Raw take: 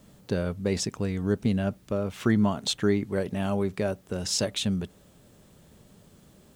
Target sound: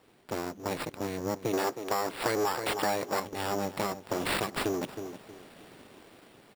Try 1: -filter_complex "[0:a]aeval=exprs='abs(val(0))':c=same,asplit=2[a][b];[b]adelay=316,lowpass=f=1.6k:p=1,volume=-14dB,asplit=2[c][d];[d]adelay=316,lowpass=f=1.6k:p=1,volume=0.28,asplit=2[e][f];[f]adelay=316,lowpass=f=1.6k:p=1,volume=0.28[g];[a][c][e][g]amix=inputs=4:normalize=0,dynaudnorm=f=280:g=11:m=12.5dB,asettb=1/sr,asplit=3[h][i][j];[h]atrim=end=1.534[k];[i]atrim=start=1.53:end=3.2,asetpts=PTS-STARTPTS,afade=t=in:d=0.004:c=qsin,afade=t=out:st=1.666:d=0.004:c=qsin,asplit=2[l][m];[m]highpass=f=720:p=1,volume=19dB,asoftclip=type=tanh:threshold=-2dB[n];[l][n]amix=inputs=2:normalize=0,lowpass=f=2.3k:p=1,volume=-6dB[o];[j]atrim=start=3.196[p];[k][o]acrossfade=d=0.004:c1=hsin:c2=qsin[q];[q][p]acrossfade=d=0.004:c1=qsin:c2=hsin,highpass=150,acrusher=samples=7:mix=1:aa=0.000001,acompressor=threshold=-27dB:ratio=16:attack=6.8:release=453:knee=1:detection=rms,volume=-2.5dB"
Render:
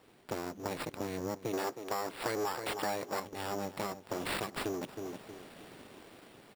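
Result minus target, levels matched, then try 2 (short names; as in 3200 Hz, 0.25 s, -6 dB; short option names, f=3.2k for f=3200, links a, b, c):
compressor: peak gain reduction +5.5 dB
-filter_complex "[0:a]aeval=exprs='abs(val(0))':c=same,asplit=2[a][b];[b]adelay=316,lowpass=f=1.6k:p=1,volume=-14dB,asplit=2[c][d];[d]adelay=316,lowpass=f=1.6k:p=1,volume=0.28,asplit=2[e][f];[f]adelay=316,lowpass=f=1.6k:p=1,volume=0.28[g];[a][c][e][g]amix=inputs=4:normalize=0,dynaudnorm=f=280:g=11:m=12.5dB,asettb=1/sr,asplit=3[h][i][j];[h]atrim=end=1.534[k];[i]atrim=start=1.53:end=3.2,asetpts=PTS-STARTPTS,afade=t=in:d=0.004:c=qsin,afade=t=out:st=1.666:d=0.004:c=qsin,asplit=2[l][m];[m]highpass=f=720:p=1,volume=19dB,asoftclip=type=tanh:threshold=-2dB[n];[l][n]amix=inputs=2:normalize=0,lowpass=f=2.3k:p=1,volume=-6dB[o];[j]atrim=start=3.196[p];[k][o]acrossfade=d=0.004:c1=hsin:c2=qsin[q];[q][p]acrossfade=d=0.004:c1=qsin:c2=hsin,highpass=150,acrusher=samples=7:mix=1:aa=0.000001,acompressor=threshold=-21dB:ratio=16:attack=6.8:release=453:knee=1:detection=rms,volume=-2.5dB"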